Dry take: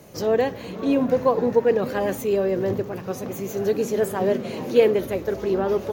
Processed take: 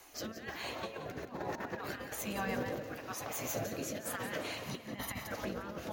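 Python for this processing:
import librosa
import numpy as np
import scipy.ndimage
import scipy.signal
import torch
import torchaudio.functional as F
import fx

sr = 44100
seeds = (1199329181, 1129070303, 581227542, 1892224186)

p1 = fx.spec_gate(x, sr, threshold_db=-10, keep='weak')
p2 = fx.low_shelf(p1, sr, hz=230.0, db=-5.5)
p3 = fx.comb(p2, sr, ms=1.0, depth=0.63, at=(4.66, 5.32))
p4 = fx.dynamic_eq(p3, sr, hz=1600.0, q=1.9, threshold_db=-42.0, ratio=4.0, max_db=5)
p5 = fx.over_compress(p4, sr, threshold_db=-35.0, ratio=-0.5)
p6 = fx.rotary(p5, sr, hz=1.1)
p7 = 10.0 ** (-23.0 / 20.0) * np.tanh(p6 / 10.0 ** (-23.0 / 20.0))
p8 = p7 + fx.echo_feedback(p7, sr, ms=175, feedback_pct=44, wet_db=-11.5, dry=0)
y = p8 * 10.0 ** (-1.5 / 20.0)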